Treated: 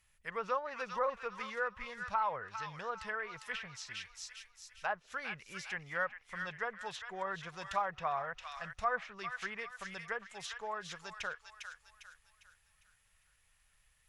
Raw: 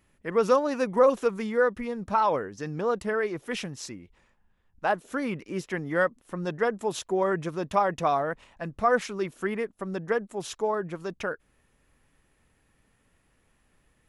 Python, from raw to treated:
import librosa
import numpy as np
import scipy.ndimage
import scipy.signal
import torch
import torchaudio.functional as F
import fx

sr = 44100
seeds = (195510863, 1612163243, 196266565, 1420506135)

y = fx.tone_stack(x, sr, knobs='10-0-10')
y = fx.echo_wet_highpass(y, sr, ms=402, feedback_pct=39, hz=1400.0, wet_db=-5.5)
y = fx.env_lowpass_down(y, sr, base_hz=1700.0, full_db=-34.0)
y = y * 10.0 ** (1.0 / 20.0)